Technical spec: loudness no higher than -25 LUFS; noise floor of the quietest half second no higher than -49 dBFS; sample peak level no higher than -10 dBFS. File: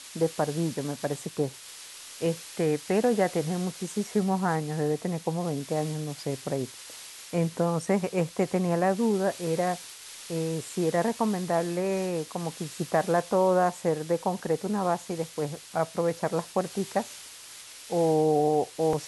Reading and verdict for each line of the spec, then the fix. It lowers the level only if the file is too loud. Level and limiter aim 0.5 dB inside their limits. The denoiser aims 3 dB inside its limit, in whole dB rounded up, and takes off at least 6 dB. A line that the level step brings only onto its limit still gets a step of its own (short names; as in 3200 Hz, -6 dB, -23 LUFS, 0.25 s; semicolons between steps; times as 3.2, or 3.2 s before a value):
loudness -28.0 LUFS: OK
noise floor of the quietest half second -46 dBFS: fail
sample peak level -10.5 dBFS: OK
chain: denoiser 6 dB, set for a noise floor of -46 dBFS